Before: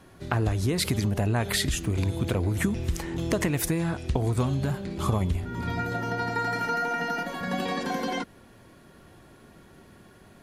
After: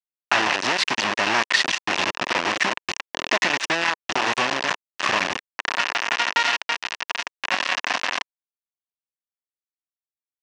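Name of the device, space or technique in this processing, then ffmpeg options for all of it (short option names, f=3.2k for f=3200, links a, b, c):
hand-held game console: -filter_complex "[0:a]asplit=3[a][b][c];[a]afade=t=out:st=6.56:d=0.02[d];[b]lowpass=f=1.2k:p=1,afade=t=in:st=6.56:d=0.02,afade=t=out:st=7.13:d=0.02[e];[c]afade=t=in:st=7.13:d=0.02[f];[d][e][f]amix=inputs=3:normalize=0,acrusher=bits=3:mix=0:aa=0.000001,highpass=450,equalizer=f=450:t=q:w=4:g=-8,equalizer=f=1k:t=q:w=4:g=5,equalizer=f=1.8k:t=q:w=4:g=7,equalizer=f=2.7k:t=q:w=4:g=8,equalizer=f=5.7k:t=q:w=4:g=3,lowpass=f=5.9k:w=0.5412,lowpass=f=5.9k:w=1.3066,volume=4.5dB"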